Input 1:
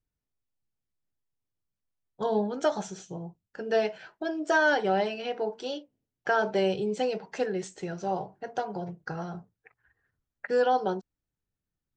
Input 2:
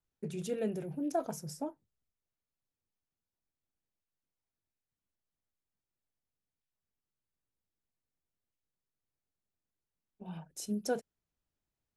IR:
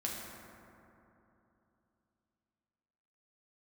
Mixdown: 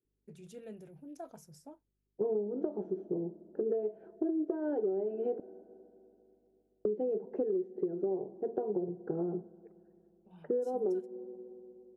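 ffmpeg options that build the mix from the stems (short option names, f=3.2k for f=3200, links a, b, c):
-filter_complex "[0:a]highpass=220,alimiter=limit=-18dB:level=0:latency=1:release=417,lowpass=f=380:t=q:w=4.6,volume=1dB,asplit=3[a][b][c];[a]atrim=end=5.4,asetpts=PTS-STARTPTS,afade=t=out:st=5.396:d=0.004:c=hsin[d];[b]atrim=start=5.4:end=6.85,asetpts=PTS-STARTPTS,volume=0[e];[c]atrim=start=6.85,asetpts=PTS-STARTPTS,afade=t=in:d=0.004:c=hsin[f];[d][e][f]concat=n=3:v=0:a=1,asplit=2[g][h];[h]volume=-22.5dB[i];[1:a]aeval=exprs='val(0)+0.000316*(sin(2*PI*50*n/s)+sin(2*PI*2*50*n/s)/2+sin(2*PI*3*50*n/s)/3+sin(2*PI*4*50*n/s)/4+sin(2*PI*5*50*n/s)/5)':c=same,adelay=50,volume=-13dB[j];[2:a]atrim=start_sample=2205[k];[i][k]afir=irnorm=-1:irlink=0[l];[g][j][l]amix=inputs=3:normalize=0,acompressor=threshold=-29dB:ratio=16"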